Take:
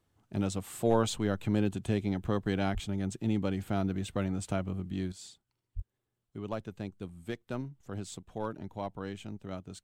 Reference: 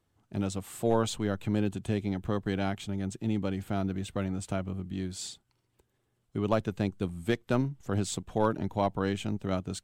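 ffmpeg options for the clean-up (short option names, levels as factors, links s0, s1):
-filter_complex "[0:a]asplit=3[s0][s1][s2];[s0]afade=t=out:st=2.73:d=0.02[s3];[s1]highpass=f=140:w=0.5412,highpass=f=140:w=1.3066,afade=t=in:st=2.73:d=0.02,afade=t=out:st=2.85:d=0.02[s4];[s2]afade=t=in:st=2.85:d=0.02[s5];[s3][s4][s5]amix=inputs=3:normalize=0,asplit=3[s6][s7][s8];[s6]afade=t=out:st=5.75:d=0.02[s9];[s7]highpass=f=140:w=0.5412,highpass=f=140:w=1.3066,afade=t=in:st=5.75:d=0.02,afade=t=out:st=5.87:d=0.02[s10];[s8]afade=t=in:st=5.87:d=0.02[s11];[s9][s10][s11]amix=inputs=3:normalize=0,asetnsamples=n=441:p=0,asendcmd='5.12 volume volume 9.5dB',volume=1"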